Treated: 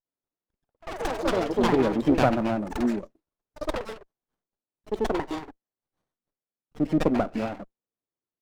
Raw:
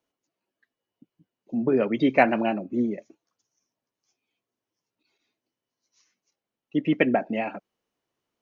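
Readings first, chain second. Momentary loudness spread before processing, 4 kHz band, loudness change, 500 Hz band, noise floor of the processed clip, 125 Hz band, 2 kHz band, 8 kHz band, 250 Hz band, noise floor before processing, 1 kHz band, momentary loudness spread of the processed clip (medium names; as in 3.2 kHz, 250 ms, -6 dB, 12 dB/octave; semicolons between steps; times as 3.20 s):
12 LU, +4.5 dB, -2.0 dB, +0.5 dB, under -85 dBFS, +4.5 dB, -4.5 dB, no reading, +0.5 dB, under -85 dBFS, 0.0 dB, 15 LU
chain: ever faster or slower copies 93 ms, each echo +6 st, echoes 3; gate -43 dBFS, range -13 dB; bands offset in time highs, lows 50 ms, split 960 Hz; sliding maximum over 17 samples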